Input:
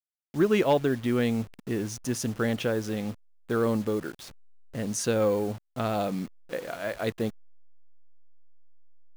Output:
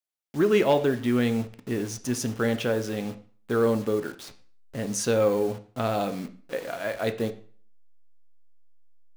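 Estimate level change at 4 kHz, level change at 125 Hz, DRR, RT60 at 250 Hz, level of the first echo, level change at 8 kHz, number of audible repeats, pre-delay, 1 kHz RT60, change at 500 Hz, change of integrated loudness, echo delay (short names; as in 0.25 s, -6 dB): +2.0 dB, +0.5 dB, 8.0 dB, 0.45 s, none, +1.5 dB, none, 4 ms, 0.45 s, +2.5 dB, +2.0 dB, none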